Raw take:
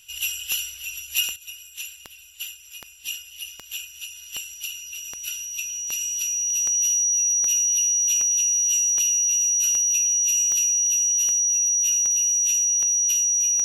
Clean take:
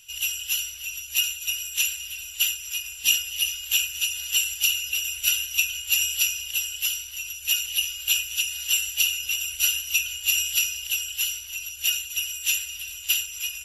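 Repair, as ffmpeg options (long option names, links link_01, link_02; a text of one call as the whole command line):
ffmpeg -i in.wav -af "adeclick=threshold=4,bandreject=frequency=5800:width=30,asetnsamples=nb_out_samples=441:pad=0,asendcmd='1.36 volume volume 11dB',volume=0dB" out.wav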